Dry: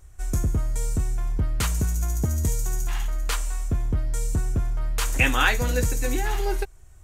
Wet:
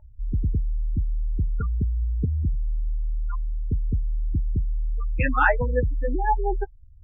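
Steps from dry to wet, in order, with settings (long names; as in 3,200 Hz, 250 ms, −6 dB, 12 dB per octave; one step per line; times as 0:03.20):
gate on every frequency bin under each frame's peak −15 dB strong
high shelf with overshoot 2,300 Hz −12.5 dB, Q 1.5
hollow resonant body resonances 610/870 Hz, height 18 dB, ringing for 80 ms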